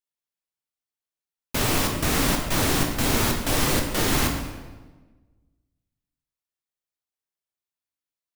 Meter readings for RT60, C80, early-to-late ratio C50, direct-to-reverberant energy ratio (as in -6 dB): 1.3 s, 6.5 dB, 4.5 dB, 1.5 dB